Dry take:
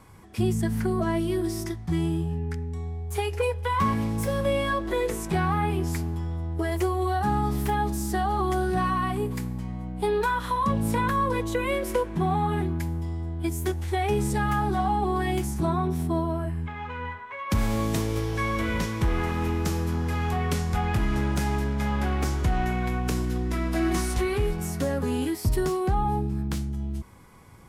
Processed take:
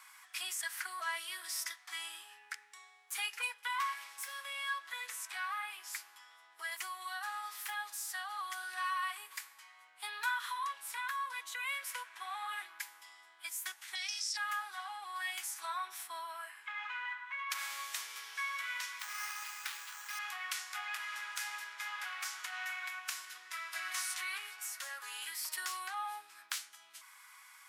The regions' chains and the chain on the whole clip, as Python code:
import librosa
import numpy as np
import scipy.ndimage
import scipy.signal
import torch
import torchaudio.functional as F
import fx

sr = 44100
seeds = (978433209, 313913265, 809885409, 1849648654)

y = fx.chain(x, sr, fx.lowpass_res(hz=5300.0, q=8.8),
    fx.differentiator(),
    fx.env_flatten(amount_pct=70), at=(13.95, 14.37))
y = fx.chain(y, sr, fx.resample_bad(factor=6, down='none', up='hold'),
    fx.low_shelf(hz=490.0, db=-6.5), at=(18.99, 20.19))
y = scipy.signal.sosfilt(scipy.signal.butter(4, 1300.0, 'highpass', fs=sr, output='sos'), y)
y = fx.rider(y, sr, range_db=10, speed_s=2.0)
y = F.gain(torch.from_numpy(y), -3.5).numpy()